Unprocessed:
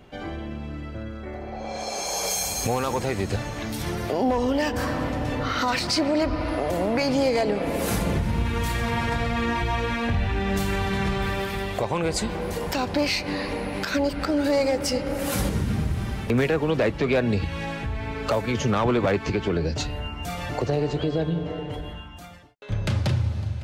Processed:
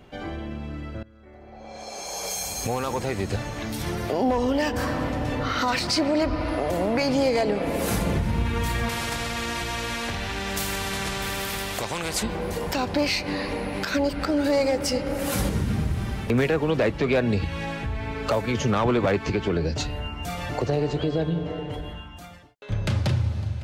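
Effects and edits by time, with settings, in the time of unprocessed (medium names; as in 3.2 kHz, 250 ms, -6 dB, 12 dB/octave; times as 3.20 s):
1.03–4.27 s: fade in equal-power, from -19.5 dB
8.89–12.23 s: spectrum-flattening compressor 2:1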